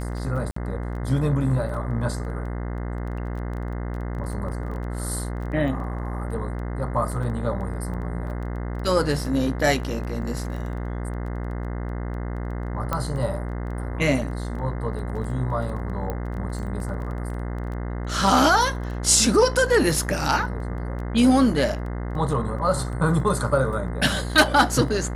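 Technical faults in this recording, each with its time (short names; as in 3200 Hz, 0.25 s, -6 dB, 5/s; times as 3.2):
buzz 60 Hz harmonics 35 -29 dBFS
crackle 11/s -33 dBFS
0.51–0.56 gap 54 ms
12.93 pop -11 dBFS
16.1 pop -16 dBFS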